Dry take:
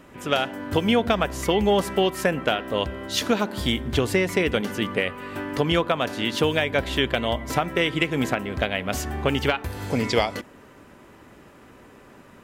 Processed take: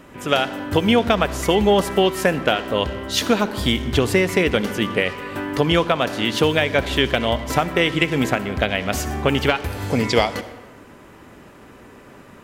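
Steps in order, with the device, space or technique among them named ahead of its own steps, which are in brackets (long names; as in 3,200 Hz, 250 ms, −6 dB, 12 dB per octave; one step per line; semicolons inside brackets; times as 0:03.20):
saturated reverb return (on a send at −9 dB: convolution reverb RT60 0.90 s, pre-delay 57 ms + soft clipping −27 dBFS, distortion −7 dB)
on the sum: level +4 dB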